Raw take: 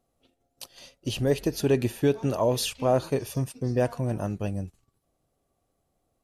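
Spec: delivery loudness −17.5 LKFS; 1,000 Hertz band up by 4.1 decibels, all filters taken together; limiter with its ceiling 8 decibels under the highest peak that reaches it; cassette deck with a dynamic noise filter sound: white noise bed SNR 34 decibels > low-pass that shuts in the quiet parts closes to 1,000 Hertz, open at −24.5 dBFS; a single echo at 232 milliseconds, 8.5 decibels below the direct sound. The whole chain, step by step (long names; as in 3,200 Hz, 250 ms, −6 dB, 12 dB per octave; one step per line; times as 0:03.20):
parametric band 1,000 Hz +5.5 dB
brickwall limiter −17.5 dBFS
single-tap delay 232 ms −8.5 dB
white noise bed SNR 34 dB
low-pass that shuts in the quiet parts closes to 1,000 Hz, open at −24.5 dBFS
level +11 dB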